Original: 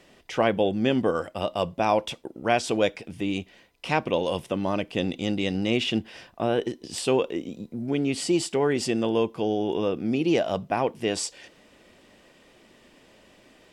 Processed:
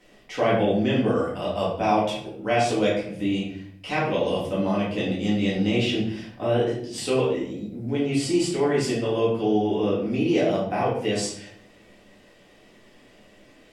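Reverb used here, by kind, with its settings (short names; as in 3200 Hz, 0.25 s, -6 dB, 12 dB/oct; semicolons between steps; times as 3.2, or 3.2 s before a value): shoebox room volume 110 m³, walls mixed, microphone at 2 m; gain -7 dB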